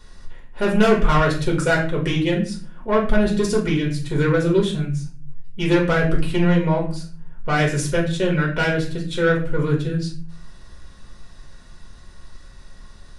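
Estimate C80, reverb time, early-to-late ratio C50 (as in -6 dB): 12.0 dB, 0.40 s, 8.0 dB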